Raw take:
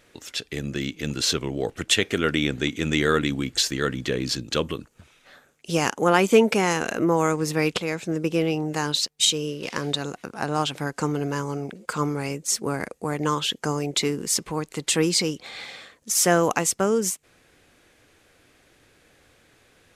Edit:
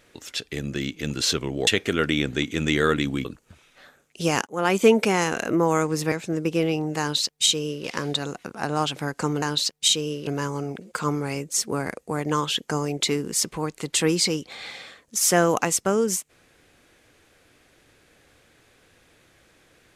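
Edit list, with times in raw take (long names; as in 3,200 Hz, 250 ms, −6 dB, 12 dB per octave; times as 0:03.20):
0:01.67–0:01.92: remove
0:03.50–0:04.74: remove
0:05.96–0:06.38: fade in equal-power
0:07.61–0:07.91: remove
0:08.79–0:09.64: duplicate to 0:11.21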